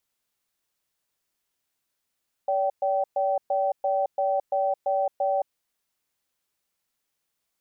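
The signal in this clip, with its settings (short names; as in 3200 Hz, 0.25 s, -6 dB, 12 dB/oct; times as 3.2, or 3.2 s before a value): cadence 572 Hz, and 774 Hz, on 0.22 s, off 0.12 s, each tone -24 dBFS 2.95 s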